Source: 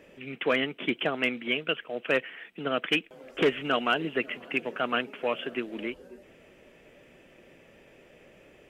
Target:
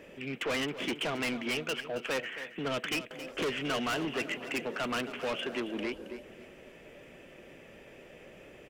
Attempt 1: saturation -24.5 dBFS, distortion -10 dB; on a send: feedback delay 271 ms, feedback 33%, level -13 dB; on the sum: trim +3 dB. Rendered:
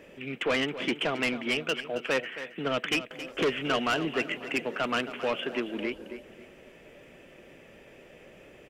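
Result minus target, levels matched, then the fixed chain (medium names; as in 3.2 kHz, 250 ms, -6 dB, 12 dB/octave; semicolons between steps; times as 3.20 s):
saturation: distortion -5 dB
saturation -32 dBFS, distortion -4 dB; on a send: feedback delay 271 ms, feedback 33%, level -13 dB; on the sum: trim +3 dB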